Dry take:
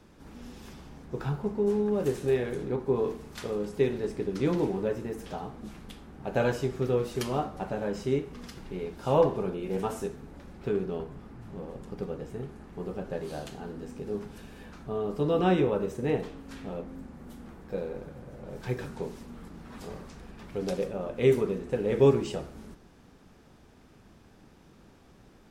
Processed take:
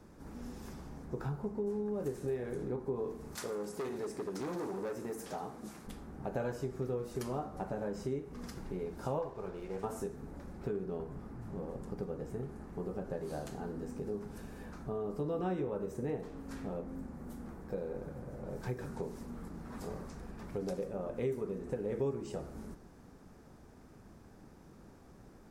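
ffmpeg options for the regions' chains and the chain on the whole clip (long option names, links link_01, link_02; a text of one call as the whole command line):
ffmpeg -i in.wav -filter_complex "[0:a]asettb=1/sr,asplit=3[link_01][link_02][link_03];[link_01]atrim=end=3.354[link_04];[link_02]atrim=start=3.35:end=5.87,asetpts=PTS-STARTPTS,afade=type=in:duration=0.004:curve=qsin,afade=type=out:start_time=2.516:duration=0.004:curve=qsin,equalizer=frequency=9100:width_type=o:width=2.5:gain=6,asoftclip=type=hard:threshold=-29dB,highpass=frequency=290:poles=1[link_05];[link_03]atrim=start=5.866[link_06];[link_04][link_05]acrossfade=duration=0.004:curve1=hsin:curve2=qsin[link_07];[link_07][link_06]acrossfade=duration=0.004:curve1=qsin:curve2=hsin,asettb=1/sr,asplit=3[link_08][link_09][link_10];[link_08]atrim=end=9.194[link_11];[link_09]atrim=start=9.19:end=9.84,asetpts=PTS-STARTPTS,afade=type=in:duration=0.004:curve=qsin,afade=type=out:start_time=0.646:duration=0.004:curve=qsin,lowpass=5900,equalizer=frequency=230:width_type=o:width=1.9:gain=-10.5,aeval=exprs='sgn(val(0))*max(abs(val(0))-0.00224,0)':channel_layout=same[link_12];[link_10]atrim=start=9.836[link_13];[link_11][link_12]acrossfade=duration=0.004:curve1=hsin:curve2=qsin[link_14];[link_14][link_13]acrossfade=duration=0.004:curve1=qsin:curve2=hsin,equalizer=frequency=3100:width=1.2:gain=-10,acompressor=threshold=-36dB:ratio=3" out.wav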